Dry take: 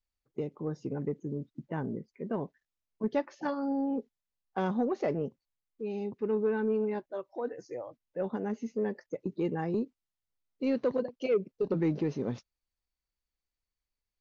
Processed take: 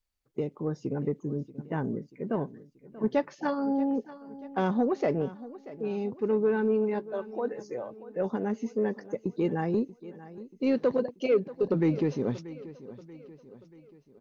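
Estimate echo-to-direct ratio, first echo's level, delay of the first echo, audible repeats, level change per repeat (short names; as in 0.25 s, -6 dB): -16.0 dB, -17.0 dB, 0.634 s, 3, -6.0 dB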